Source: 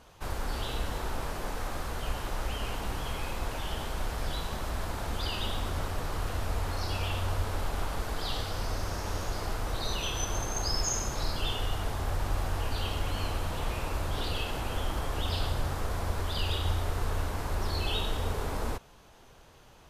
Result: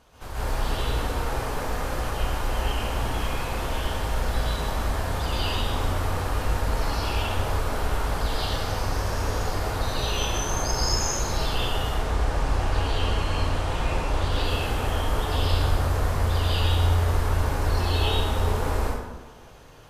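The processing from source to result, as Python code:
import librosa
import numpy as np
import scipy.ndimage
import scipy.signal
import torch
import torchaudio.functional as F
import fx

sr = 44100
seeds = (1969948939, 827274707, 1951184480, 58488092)

y = fx.lowpass(x, sr, hz=8500.0, slope=12, at=(11.82, 14.32))
y = fx.rev_plate(y, sr, seeds[0], rt60_s=1.2, hf_ratio=0.55, predelay_ms=115, drr_db=-9.0)
y = y * 10.0 ** (-2.5 / 20.0)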